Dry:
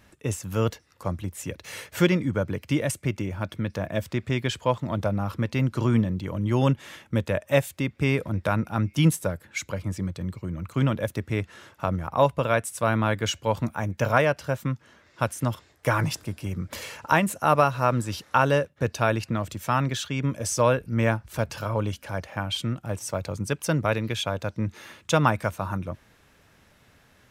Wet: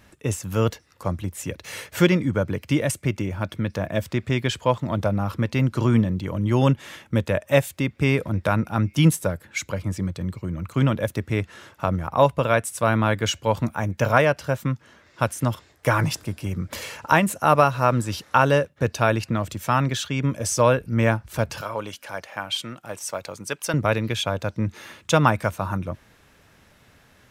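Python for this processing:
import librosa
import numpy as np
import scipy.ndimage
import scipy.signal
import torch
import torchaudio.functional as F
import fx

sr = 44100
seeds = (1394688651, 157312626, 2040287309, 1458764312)

y = fx.highpass(x, sr, hz=670.0, slope=6, at=(21.61, 23.74))
y = y * librosa.db_to_amplitude(3.0)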